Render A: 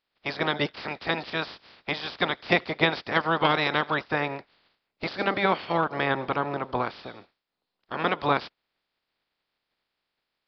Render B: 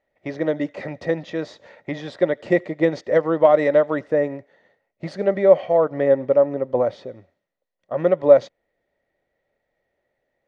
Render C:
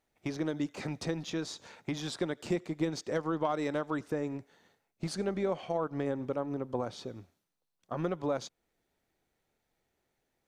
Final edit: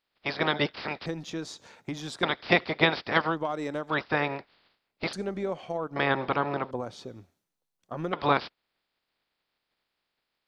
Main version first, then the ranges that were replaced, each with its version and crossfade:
A
1.06–2.23 from C
3.31–3.92 from C, crossfade 0.10 s
5.13–5.96 from C
6.71–8.13 from C
not used: B

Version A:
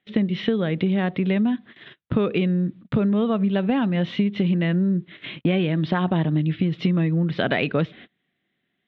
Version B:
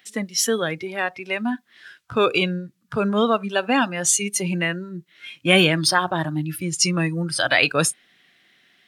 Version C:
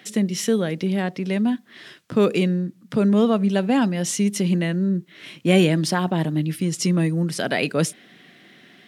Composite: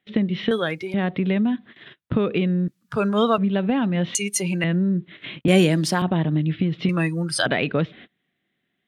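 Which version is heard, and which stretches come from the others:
A
0.51–0.94 from B
2.68–3.38 from B
4.15–4.64 from B
5.48–6.02 from C
6.89–7.46 from B

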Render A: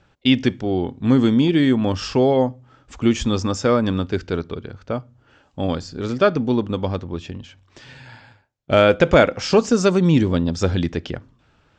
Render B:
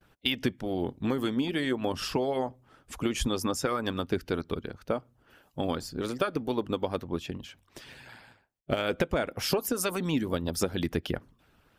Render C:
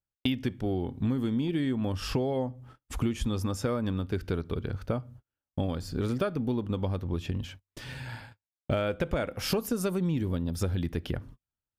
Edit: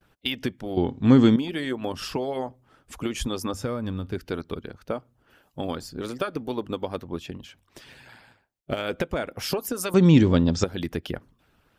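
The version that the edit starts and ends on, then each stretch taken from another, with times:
B
0.77–1.36 from A
3.54–4.15 from C
9.94–10.64 from A

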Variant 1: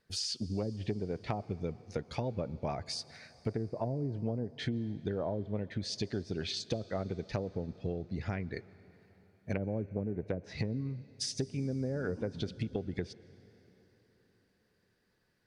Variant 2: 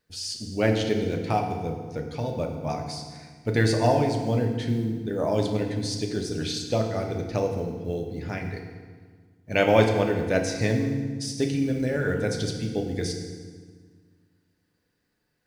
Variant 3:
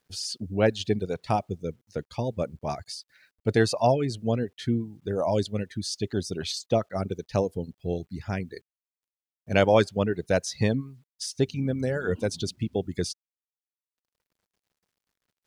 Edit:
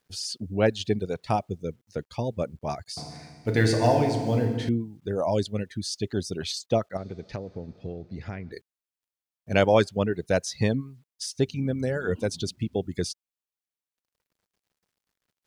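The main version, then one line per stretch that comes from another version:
3
2.97–4.69 from 2
6.97–8.52 from 1

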